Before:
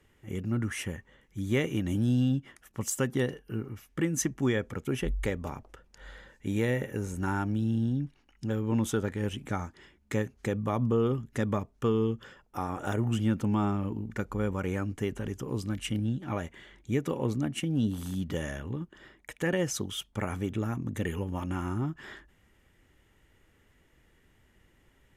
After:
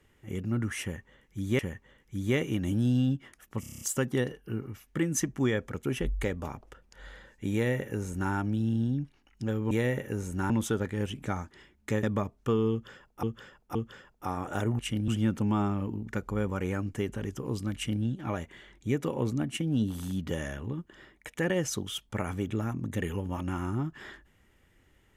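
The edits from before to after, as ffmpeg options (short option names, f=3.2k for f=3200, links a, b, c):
-filter_complex "[0:a]asplit=16[a][b][c][d][e][f][g][h][i][j][k][l][m][n][o][p];[a]atrim=end=1.592[q];[b]atrim=start=0.818:end=2.862[r];[c]atrim=start=2.828:end=2.862[s];[d]atrim=start=2.828:end=2.862[t];[e]atrim=start=2.828:end=2.862[u];[f]atrim=start=2.828:end=2.862[v];[g]atrim=start=2.828:end=2.862[w];[h]atrim=start=2.828:end=2.862[x];[i]atrim=start=2.828:end=8.732[y];[j]atrim=start=6.548:end=7.342[z];[k]atrim=start=8.728:end=10.262[aa];[l]atrim=start=11.388:end=12.592[ab];[m]atrim=start=12.068:end=12.592[ac];[n]atrim=start=12.068:end=13.112[ad];[o]atrim=start=15.778:end=16.072[ae];[p]atrim=start=13.108[af];[q][r]acrossfade=d=0.004:c1=hsin:c2=hsin[ag];[ag][s]acrossfade=d=0.004:c1=hsin:c2=hsin[ah];[ah][t]acrossfade=d=0.004:c1=hsin:c2=hsin[ai];[ai][u]acrossfade=d=0.004:c1=hsin:c2=hsin[aj];[aj][v]acrossfade=d=0.004:c1=hsin:c2=hsin[ak];[ak][w]acrossfade=d=0.004:c1=hsin:c2=hsin[al];[al][x]acrossfade=d=0.004:c1=hsin:c2=hsin[am];[am][y]acrossfade=d=0.004:c1=hsin:c2=hsin[an];[an][z]acrossfade=d=0.004:c1=hsin:c2=hsin[ao];[ao][aa]acrossfade=d=0.004:c1=hsin:c2=hsin[ap];[ap][ab]acrossfade=d=0.004:c1=hsin:c2=hsin[aq];[aq][ac]acrossfade=d=0.004:c1=hsin:c2=hsin[ar];[ar][ad]acrossfade=d=0.004:c1=hsin:c2=hsin[as];[as][ae]acrossfade=d=0.004:c1=hsin:c2=hsin[at];[at][af]acrossfade=d=0.004:c1=hsin:c2=hsin"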